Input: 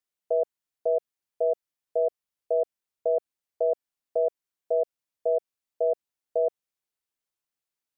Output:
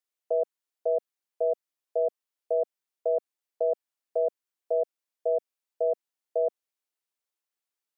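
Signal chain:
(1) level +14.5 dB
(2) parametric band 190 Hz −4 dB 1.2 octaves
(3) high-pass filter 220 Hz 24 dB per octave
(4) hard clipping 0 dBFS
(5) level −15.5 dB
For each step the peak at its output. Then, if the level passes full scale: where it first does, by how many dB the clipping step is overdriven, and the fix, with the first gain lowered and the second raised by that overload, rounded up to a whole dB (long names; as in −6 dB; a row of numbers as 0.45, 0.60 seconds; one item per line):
−2.0, −2.5, −2.5, −2.5, −18.0 dBFS
no step passes full scale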